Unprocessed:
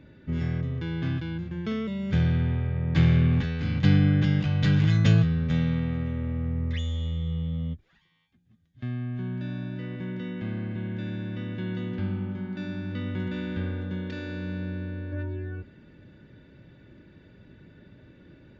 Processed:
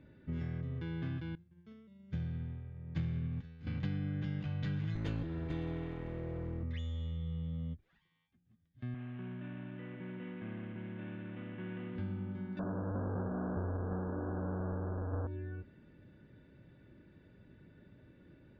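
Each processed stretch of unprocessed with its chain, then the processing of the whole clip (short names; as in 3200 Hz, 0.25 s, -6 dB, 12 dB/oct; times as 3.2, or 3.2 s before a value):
1.35–3.67 tone controls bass +5 dB, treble +6 dB + upward expander 2.5:1, over -30 dBFS
4.95–6.63 minimum comb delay 2.2 ms + notch 5500 Hz + comb 6 ms, depth 41%
8.94–11.96 CVSD 16 kbps + HPF 190 Hz 6 dB/oct
12.59–15.27 half-waves squared off + brick-wall FIR low-pass 1700 Hz + bell 460 Hz +4.5 dB 0.73 oct
whole clip: high shelf 4600 Hz -11 dB; compressor 4:1, threshold -27 dBFS; gain -7.5 dB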